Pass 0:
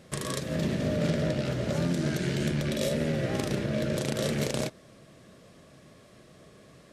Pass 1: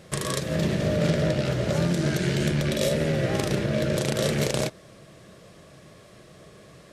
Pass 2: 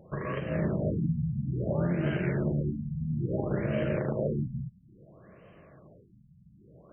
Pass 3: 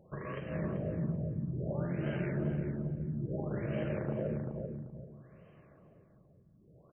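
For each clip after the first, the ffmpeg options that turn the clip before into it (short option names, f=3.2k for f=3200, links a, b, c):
-af "equalizer=f=250:w=6.5:g=-10,volume=5dB"
-af "afftfilt=real='re*lt(b*sr/1024,210*pow(3200/210,0.5+0.5*sin(2*PI*0.59*pts/sr)))':imag='im*lt(b*sr/1024,210*pow(3200/210,0.5+0.5*sin(2*PI*0.59*pts/sr)))':win_size=1024:overlap=0.75,volume=-4dB"
-filter_complex "[0:a]asplit=2[a][b];[b]adelay=388,lowpass=f=1.2k:p=1,volume=-4.5dB,asplit=2[c][d];[d]adelay=388,lowpass=f=1.2k:p=1,volume=0.28,asplit=2[e][f];[f]adelay=388,lowpass=f=1.2k:p=1,volume=0.28,asplit=2[g][h];[h]adelay=388,lowpass=f=1.2k:p=1,volume=0.28[i];[a][c][e][g][i]amix=inputs=5:normalize=0,volume=-7dB"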